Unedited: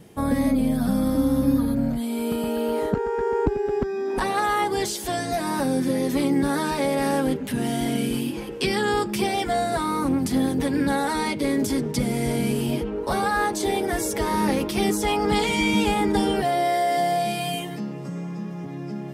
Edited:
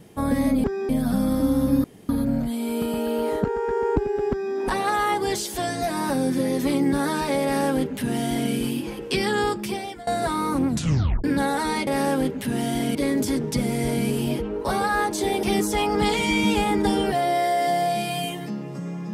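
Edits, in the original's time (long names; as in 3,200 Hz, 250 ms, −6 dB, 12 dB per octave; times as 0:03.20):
0:01.59: splice in room tone 0.25 s
0:03.80–0:04.05: duplicate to 0:00.64
0:06.93–0:08.01: duplicate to 0:11.37
0:08.92–0:09.57: fade out, to −20.5 dB
0:10.17: tape stop 0.57 s
0:13.85–0:14.73: remove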